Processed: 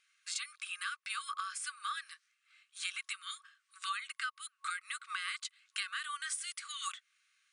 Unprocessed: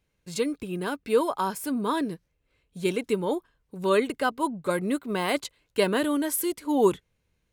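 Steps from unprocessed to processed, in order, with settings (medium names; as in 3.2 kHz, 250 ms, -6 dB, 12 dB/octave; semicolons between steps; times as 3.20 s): FFT band-pass 1.1–10 kHz; compression 5:1, threshold -46 dBFS, peak gain reduction 18.5 dB; trim +8.5 dB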